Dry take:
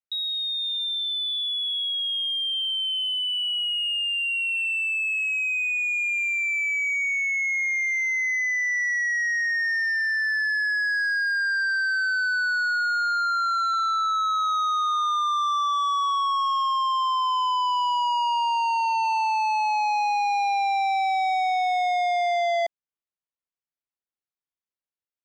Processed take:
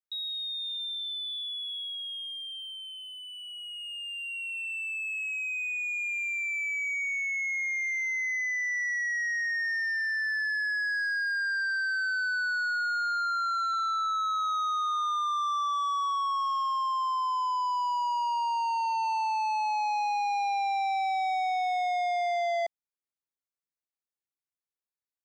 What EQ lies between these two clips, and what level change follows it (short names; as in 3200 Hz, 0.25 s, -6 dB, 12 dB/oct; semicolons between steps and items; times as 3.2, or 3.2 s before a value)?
bell 3000 Hz -11.5 dB 0.23 oct; -5.0 dB